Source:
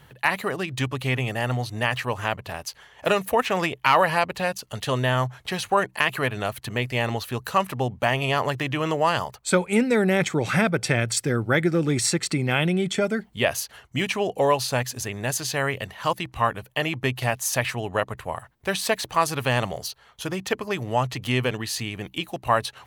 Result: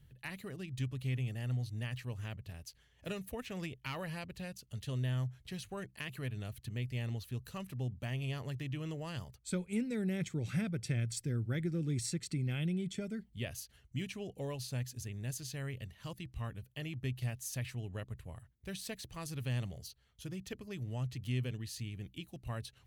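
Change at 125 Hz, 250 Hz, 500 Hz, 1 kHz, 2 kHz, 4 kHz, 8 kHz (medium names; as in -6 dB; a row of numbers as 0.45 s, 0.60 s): -8.0 dB, -12.5 dB, -21.0 dB, -28.0 dB, -21.5 dB, -18.0 dB, -16.0 dB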